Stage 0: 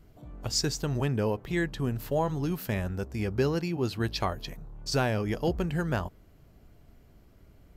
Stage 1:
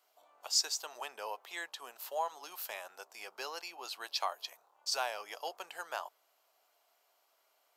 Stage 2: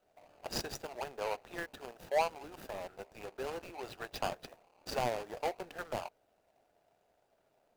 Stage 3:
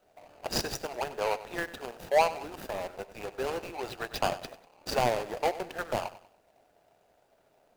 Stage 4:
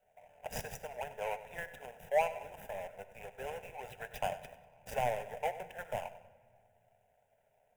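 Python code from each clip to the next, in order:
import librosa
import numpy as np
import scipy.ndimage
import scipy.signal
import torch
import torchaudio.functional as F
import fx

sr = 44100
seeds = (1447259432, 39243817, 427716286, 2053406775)

y1 = scipy.signal.sosfilt(scipy.signal.butter(4, 760.0, 'highpass', fs=sr, output='sos'), x)
y1 = fx.peak_eq(y1, sr, hz=1800.0, db=-8.0, octaves=0.98)
y2 = scipy.ndimage.median_filter(y1, 41, mode='constant')
y2 = F.gain(torch.from_numpy(y2), 10.5).numpy()
y3 = fx.echo_feedback(y2, sr, ms=96, feedback_pct=37, wet_db=-15.5)
y3 = F.gain(torch.from_numpy(y3), 7.0).numpy()
y4 = fx.fixed_phaser(y3, sr, hz=1200.0, stages=6)
y4 = fx.room_shoebox(y4, sr, seeds[0], volume_m3=2900.0, walls='mixed', distance_m=0.4)
y4 = F.gain(torch.from_numpy(y4), -5.5).numpy()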